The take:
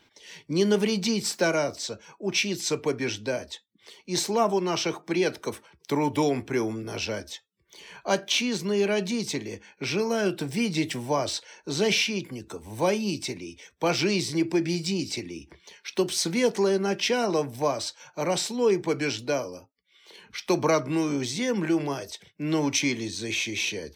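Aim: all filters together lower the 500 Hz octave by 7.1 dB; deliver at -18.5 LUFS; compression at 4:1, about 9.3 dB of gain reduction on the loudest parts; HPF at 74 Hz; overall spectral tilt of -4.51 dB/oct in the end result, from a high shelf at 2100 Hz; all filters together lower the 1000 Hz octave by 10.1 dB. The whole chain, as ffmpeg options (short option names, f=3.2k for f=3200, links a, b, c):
-af "highpass=74,equalizer=f=500:t=o:g=-7,equalizer=f=1k:t=o:g=-9,highshelf=f=2.1k:g=-8,acompressor=threshold=-35dB:ratio=4,volume=20dB"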